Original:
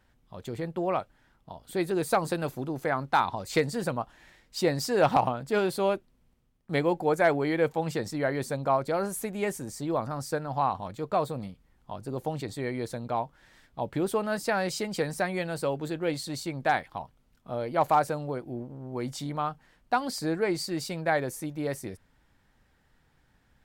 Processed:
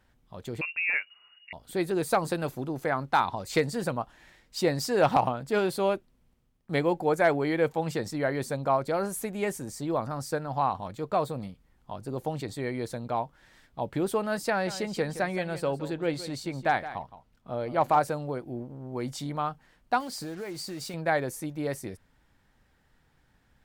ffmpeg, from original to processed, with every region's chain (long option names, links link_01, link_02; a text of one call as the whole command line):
ffmpeg -i in.wav -filter_complex "[0:a]asettb=1/sr,asplit=3[link_01][link_02][link_03];[link_01]atrim=end=0.614[link_04];[link_02]atrim=start=0.61:end=1.53,asetpts=PTS-STARTPTS,afade=type=in:duration=0.004:curve=qsin,afade=type=out:start_time=0.916:duration=0.004:curve=qsin,asubboost=boost=11.5:cutoff=62,lowpass=frequency=2500:width_type=q:width=0.5098,lowpass=frequency=2500:width_type=q:width=0.6013,lowpass=frequency=2500:width_type=q:width=0.9,lowpass=frequency=2500:width_type=q:width=2.563,afreqshift=-2900[link_05];[link_03]atrim=start=1.526[link_06];[link_04][link_05]acrossfade=duration=0.004:curve1=hsin:curve2=qsin[link_07];[link_07][link_06]acrossfade=duration=0.004:curve1=qsin:curve2=hsin,asettb=1/sr,asplit=3[link_08][link_09][link_10];[link_08]atrim=end=14.504[link_11];[link_09]atrim=start=14.5:end=18,asetpts=PTS-STARTPTS,afade=type=in:duration=0.004:curve=qsin,afade=type=out:start_time=3.496:duration=0.004:curve=qsin,highshelf=frequency=6700:gain=-7,aecho=1:1:168:0.211,atrim=end_sample=154350[link_12];[link_10]atrim=start=17.996[link_13];[link_11][link_12]acrossfade=duration=0.004:curve1=hsin:curve2=qsin[link_14];[link_14][link_13]acrossfade=duration=0.004:curve1=qsin:curve2=hsin,asettb=1/sr,asplit=3[link_15][link_16][link_17];[link_15]atrim=end=20.004[link_18];[link_16]atrim=start=20:end=20.94,asetpts=PTS-STARTPTS,afade=type=in:duration=0.004:curve=qsin,afade=type=out:start_time=0.936:duration=0.004:curve=qsin,acompressor=threshold=-33dB:ratio=8:attack=3.2:release=140:knee=1:detection=peak,acrusher=bits=7:mix=0:aa=0.5[link_19];[link_17]atrim=start=20.936[link_20];[link_18][link_19]acrossfade=duration=0.004:curve1=hsin:curve2=qsin[link_21];[link_21][link_20]acrossfade=duration=0.004:curve1=qsin:curve2=hsin" out.wav